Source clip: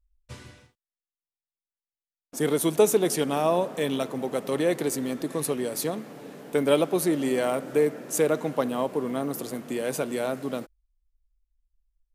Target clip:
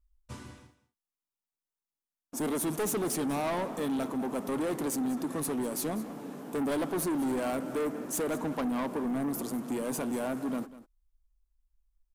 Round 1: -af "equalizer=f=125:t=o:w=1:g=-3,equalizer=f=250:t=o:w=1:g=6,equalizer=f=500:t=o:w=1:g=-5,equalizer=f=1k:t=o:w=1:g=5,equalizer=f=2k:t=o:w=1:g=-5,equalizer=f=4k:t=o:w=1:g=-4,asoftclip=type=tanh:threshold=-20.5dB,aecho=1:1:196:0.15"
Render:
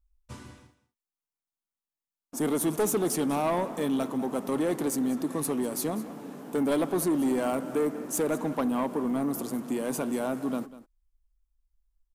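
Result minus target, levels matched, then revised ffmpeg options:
soft clip: distortion -5 dB
-af "equalizer=f=125:t=o:w=1:g=-3,equalizer=f=250:t=o:w=1:g=6,equalizer=f=500:t=o:w=1:g=-5,equalizer=f=1k:t=o:w=1:g=5,equalizer=f=2k:t=o:w=1:g=-5,equalizer=f=4k:t=o:w=1:g=-4,asoftclip=type=tanh:threshold=-27.5dB,aecho=1:1:196:0.15"

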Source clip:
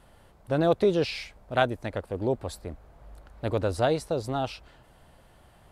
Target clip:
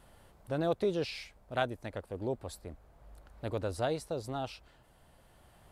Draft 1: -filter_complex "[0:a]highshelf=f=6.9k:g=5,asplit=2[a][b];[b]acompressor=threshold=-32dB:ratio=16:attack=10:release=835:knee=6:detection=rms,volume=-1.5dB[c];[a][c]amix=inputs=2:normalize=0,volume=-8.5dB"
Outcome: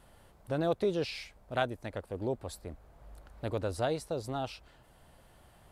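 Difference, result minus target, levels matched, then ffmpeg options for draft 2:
compressor: peak gain reduction -11.5 dB
-filter_complex "[0:a]highshelf=f=6.9k:g=5,asplit=2[a][b];[b]acompressor=threshold=-44dB:ratio=16:attack=10:release=835:knee=6:detection=rms,volume=-1.5dB[c];[a][c]amix=inputs=2:normalize=0,volume=-8.5dB"

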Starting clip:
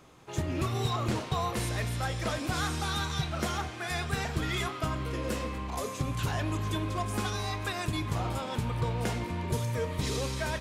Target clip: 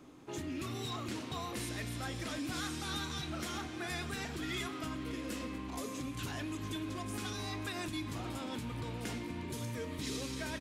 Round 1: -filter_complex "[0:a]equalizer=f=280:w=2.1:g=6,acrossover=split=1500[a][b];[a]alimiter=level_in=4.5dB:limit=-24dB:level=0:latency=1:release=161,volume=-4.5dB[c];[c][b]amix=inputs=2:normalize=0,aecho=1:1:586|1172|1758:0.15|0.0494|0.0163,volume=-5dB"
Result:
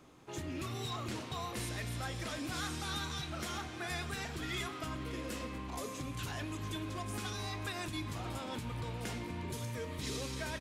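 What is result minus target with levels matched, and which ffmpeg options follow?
250 Hz band -2.5 dB
-filter_complex "[0:a]equalizer=f=280:w=2.1:g=14.5,acrossover=split=1500[a][b];[a]alimiter=level_in=4.5dB:limit=-24dB:level=0:latency=1:release=161,volume=-4.5dB[c];[c][b]amix=inputs=2:normalize=0,aecho=1:1:586|1172|1758:0.15|0.0494|0.0163,volume=-5dB"

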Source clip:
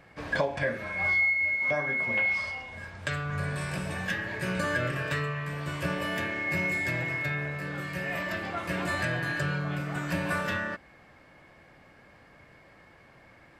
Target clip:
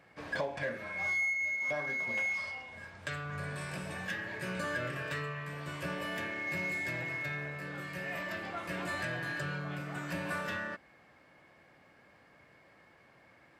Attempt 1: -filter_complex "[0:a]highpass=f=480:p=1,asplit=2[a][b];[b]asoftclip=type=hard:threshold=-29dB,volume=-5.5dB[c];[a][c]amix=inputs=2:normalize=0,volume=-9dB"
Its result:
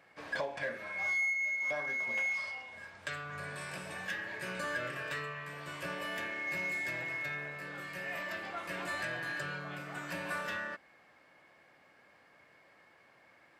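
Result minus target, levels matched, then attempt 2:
125 Hz band -7.0 dB
-filter_complex "[0:a]highpass=f=140:p=1,asplit=2[a][b];[b]asoftclip=type=hard:threshold=-29dB,volume=-5.5dB[c];[a][c]amix=inputs=2:normalize=0,volume=-9dB"

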